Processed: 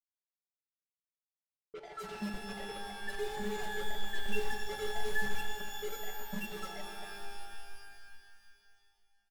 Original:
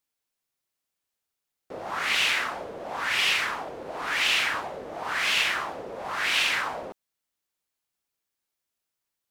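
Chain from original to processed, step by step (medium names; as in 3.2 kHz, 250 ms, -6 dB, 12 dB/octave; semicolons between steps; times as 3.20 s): median filter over 41 samples; peaking EQ 7.9 kHz -2.5 dB 1.1 oct; feedback delay 249 ms, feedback 45%, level -8.5 dB; loudest bins only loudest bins 1; inharmonic resonator 200 Hz, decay 0.37 s, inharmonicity 0.03; bit crusher 11-bit; bass shelf 270 Hz +6.5 dB; comb 5.2 ms, depth 90%; level-controlled noise filter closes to 470 Hz, open at -55.5 dBFS; pitch-shifted reverb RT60 2.5 s, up +12 st, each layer -2 dB, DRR 4.5 dB; trim +17.5 dB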